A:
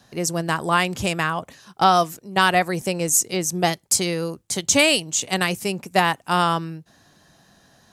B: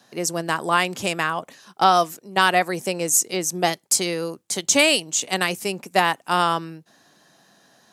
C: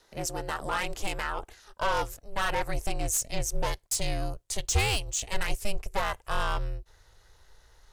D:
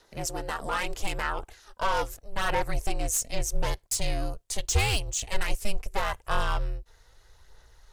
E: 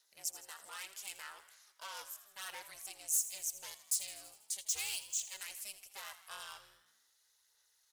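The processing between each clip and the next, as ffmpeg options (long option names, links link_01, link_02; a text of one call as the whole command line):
ffmpeg -i in.wav -af "highpass=220" out.wav
ffmpeg -i in.wav -af "aeval=exprs='val(0)*sin(2*PI*200*n/s)':channel_layout=same,asoftclip=type=tanh:threshold=-17.5dB,asubboost=boost=10.5:cutoff=73,volume=-3.5dB" out.wav
ffmpeg -i in.wav -af "aphaser=in_gain=1:out_gain=1:delay=4.4:decay=0.31:speed=0.79:type=sinusoidal" out.wav
ffmpeg -i in.wav -filter_complex "[0:a]aderivative,asplit=2[link_01][link_02];[link_02]asplit=7[link_03][link_04][link_05][link_06][link_07][link_08][link_09];[link_03]adelay=81,afreqshift=64,volume=-14dB[link_10];[link_04]adelay=162,afreqshift=128,volume=-18dB[link_11];[link_05]adelay=243,afreqshift=192,volume=-22dB[link_12];[link_06]adelay=324,afreqshift=256,volume=-26dB[link_13];[link_07]adelay=405,afreqshift=320,volume=-30.1dB[link_14];[link_08]adelay=486,afreqshift=384,volume=-34.1dB[link_15];[link_09]adelay=567,afreqshift=448,volume=-38.1dB[link_16];[link_10][link_11][link_12][link_13][link_14][link_15][link_16]amix=inputs=7:normalize=0[link_17];[link_01][link_17]amix=inputs=2:normalize=0,volume=-5dB" out.wav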